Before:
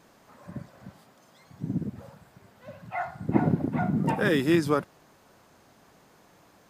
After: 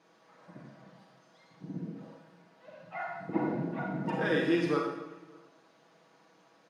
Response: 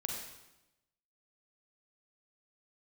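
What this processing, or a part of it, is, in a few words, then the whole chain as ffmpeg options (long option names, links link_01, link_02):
supermarket ceiling speaker: -filter_complex "[0:a]bandreject=frequency=7600:width=5.8,asettb=1/sr,asplit=3[link_01][link_02][link_03];[link_01]atrim=end=1.864[link_04];[link_02]atrim=start=1.86:end=2.72,asetpts=PTS-STARTPTS,afade=type=in:duration=0.004:curve=qsin,afade=type=out:start_time=0.856:duration=0.004:curve=qsin,highpass=170[link_05];[link_03]atrim=start=2.716[link_06];[link_04][link_05]acrossfade=duration=0.004:curve1=hsin:curve2=qsin[link_07];[link_07][link_06]acrossfade=duration=0.004:curve1=qsin:curve2=hsin,highpass=240,lowpass=5900,aecho=1:1:6.2:0.55,asplit=2[link_08][link_09];[link_09]adelay=583.1,volume=-26dB,highshelf=frequency=4000:gain=-13.1[link_10];[link_08][link_10]amix=inputs=2:normalize=0[link_11];[1:a]atrim=start_sample=2205[link_12];[link_11][link_12]afir=irnorm=-1:irlink=0,volume=-6.5dB"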